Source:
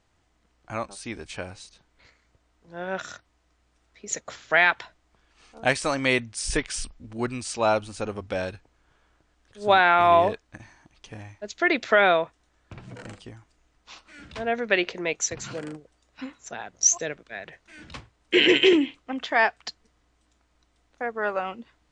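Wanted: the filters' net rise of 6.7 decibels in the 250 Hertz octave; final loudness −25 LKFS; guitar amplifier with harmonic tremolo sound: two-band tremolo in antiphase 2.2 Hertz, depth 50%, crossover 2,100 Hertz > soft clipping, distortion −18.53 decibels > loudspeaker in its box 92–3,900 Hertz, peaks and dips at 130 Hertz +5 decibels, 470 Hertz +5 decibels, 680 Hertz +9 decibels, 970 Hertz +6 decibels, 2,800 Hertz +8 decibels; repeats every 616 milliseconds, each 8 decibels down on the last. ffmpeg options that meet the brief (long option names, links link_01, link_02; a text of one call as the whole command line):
ffmpeg -i in.wav -filter_complex "[0:a]equalizer=frequency=250:width_type=o:gain=8.5,aecho=1:1:616|1232|1848|2464|3080:0.398|0.159|0.0637|0.0255|0.0102,acrossover=split=2100[link_01][link_02];[link_01]aeval=exprs='val(0)*(1-0.5/2+0.5/2*cos(2*PI*2.2*n/s))':channel_layout=same[link_03];[link_02]aeval=exprs='val(0)*(1-0.5/2-0.5/2*cos(2*PI*2.2*n/s))':channel_layout=same[link_04];[link_03][link_04]amix=inputs=2:normalize=0,asoftclip=threshold=-11dB,highpass=92,equalizer=frequency=130:width_type=q:width=4:gain=5,equalizer=frequency=470:width_type=q:width=4:gain=5,equalizer=frequency=680:width_type=q:width=4:gain=9,equalizer=frequency=970:width_type=q:width=4:gain=6,equalizer=frequency=2800:width_type=q:width=4:gain=8,lowpass=frequency=3900:width=0.5412,lowpass=frequency=3900:width=1.3066,volume=-3dB" out.wav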